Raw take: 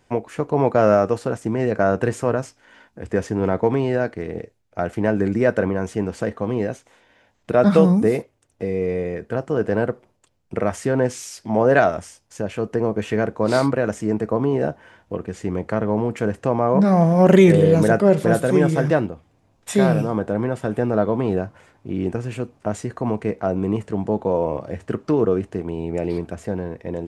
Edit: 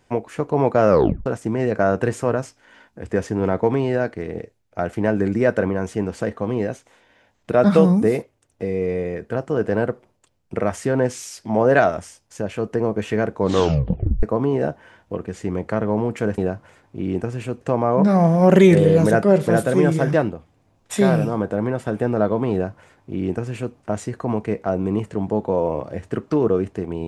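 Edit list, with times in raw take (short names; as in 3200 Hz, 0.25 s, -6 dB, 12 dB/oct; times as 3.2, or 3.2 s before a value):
0.89 tape stop 0.37 s
13.36 tape stop 0.87 s
21.29–22.52 copy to 16.38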